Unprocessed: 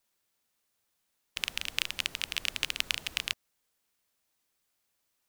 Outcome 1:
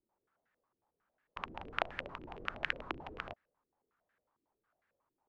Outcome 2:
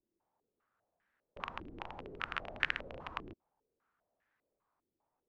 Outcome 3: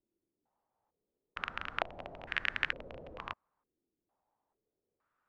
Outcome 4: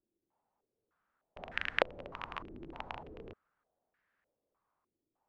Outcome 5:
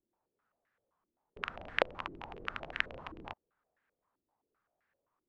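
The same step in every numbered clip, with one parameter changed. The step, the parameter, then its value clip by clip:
low-pass on a step sequencer, speed: 11, 5, 2.2, 3.3, 7.7 Hertz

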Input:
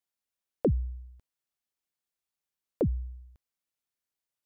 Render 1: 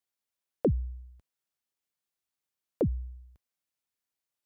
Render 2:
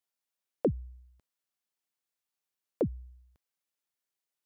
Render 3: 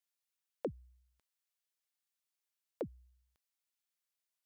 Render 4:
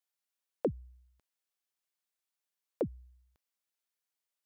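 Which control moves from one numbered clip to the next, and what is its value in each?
high-pass filter, corner frequency: 43, 210, 1,500, 550 Hertz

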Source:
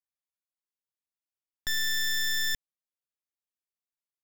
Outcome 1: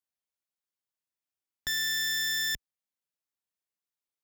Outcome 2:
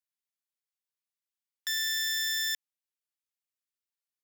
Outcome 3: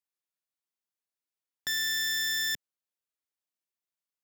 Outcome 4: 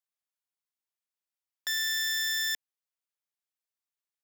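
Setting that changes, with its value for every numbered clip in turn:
high-pass filter, corner frequency: 47, 1,500, 160, 580 Hertz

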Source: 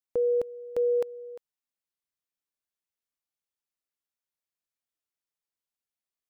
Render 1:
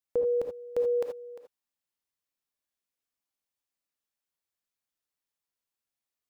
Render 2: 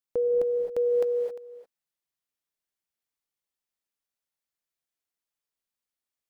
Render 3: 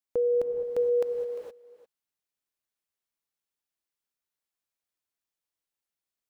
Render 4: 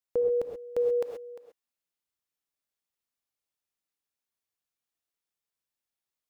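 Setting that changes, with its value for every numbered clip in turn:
reverb whose tail is shaped and stops, gate: 100, 290, 490, 150 milliseconds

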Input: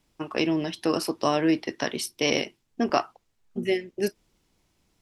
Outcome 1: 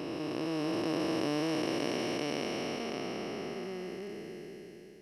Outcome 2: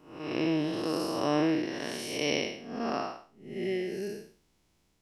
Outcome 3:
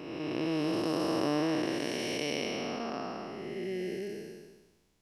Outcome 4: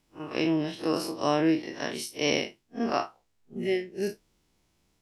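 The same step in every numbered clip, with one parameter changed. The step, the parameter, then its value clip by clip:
spectrum smeared in time, width: 1,570, 254, 627, 84 milliseconds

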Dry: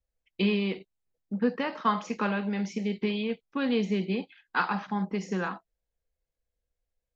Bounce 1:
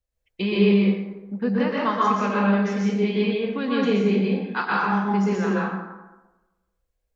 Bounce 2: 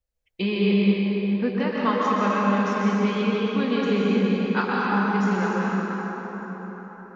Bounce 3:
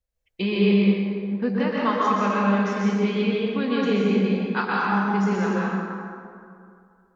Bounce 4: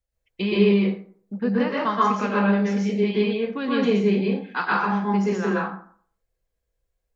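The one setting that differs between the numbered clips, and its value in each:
dense smooth reverb, RT60: 1.1, 5.2, 2.4, 0.51 seconds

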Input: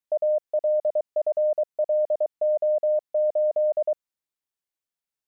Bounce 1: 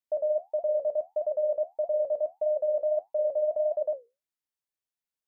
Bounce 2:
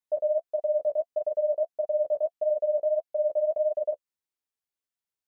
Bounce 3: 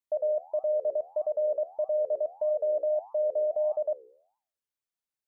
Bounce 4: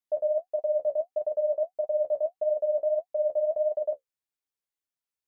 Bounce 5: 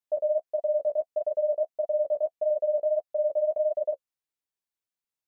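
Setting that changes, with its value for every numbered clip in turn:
flanger, regen: −65, +11, +88, +34, −13%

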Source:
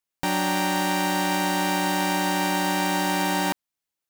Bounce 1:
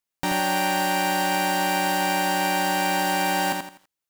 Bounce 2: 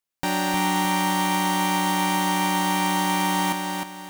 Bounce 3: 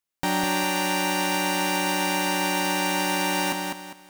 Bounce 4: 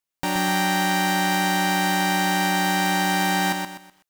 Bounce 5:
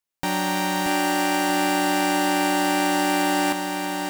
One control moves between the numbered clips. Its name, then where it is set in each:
feedback echo at a low word length, delay time: 83, 309, 202, 125, 630 milliseconds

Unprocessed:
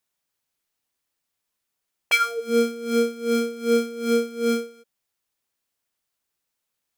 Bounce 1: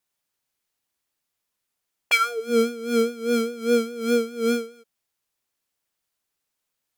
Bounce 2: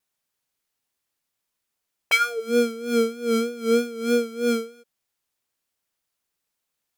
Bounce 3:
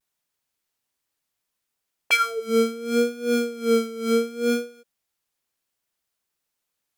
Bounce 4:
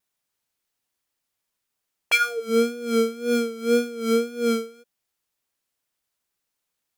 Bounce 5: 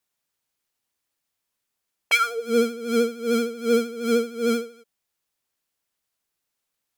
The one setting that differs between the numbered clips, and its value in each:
pitch vibrato, speed: 4.9, 3.2, 0.7, 1.9, 13 Hertz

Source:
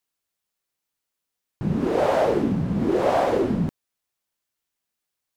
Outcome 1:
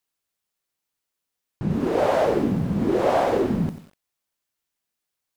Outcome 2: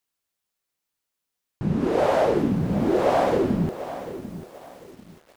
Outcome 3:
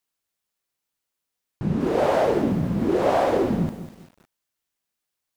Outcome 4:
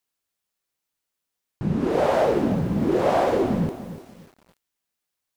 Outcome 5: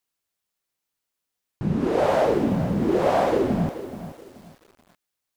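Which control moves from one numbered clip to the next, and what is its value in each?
feedback echo at a low word length, delay time: 93, 743, 198, 293, 429 milliseconds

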